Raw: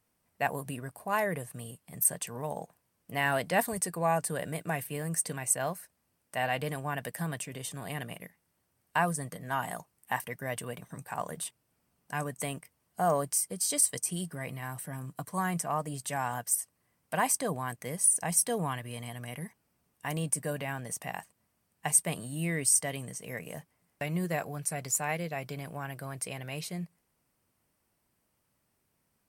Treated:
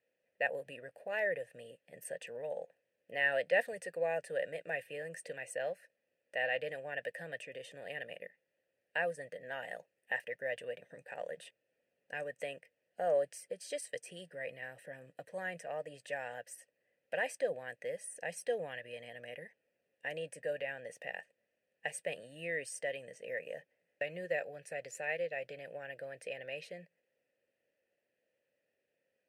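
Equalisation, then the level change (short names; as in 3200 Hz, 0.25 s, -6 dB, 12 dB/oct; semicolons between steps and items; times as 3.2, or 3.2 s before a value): dynamic EQ 300 Hz, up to -6 dB, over -45 dBFS, Q 0.86; vowel filter e; +8.5 dB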